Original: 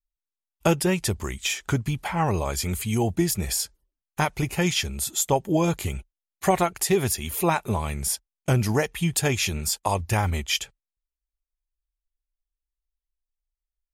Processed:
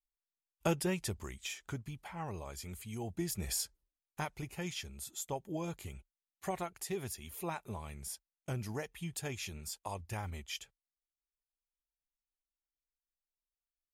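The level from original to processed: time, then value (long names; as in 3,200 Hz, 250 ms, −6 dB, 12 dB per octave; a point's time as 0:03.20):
0:00.86 −11 dB
0:01.91 −18 dB
0:02.98 −18 dB
0:03.57 −9 dB
0:04.47 −17 dB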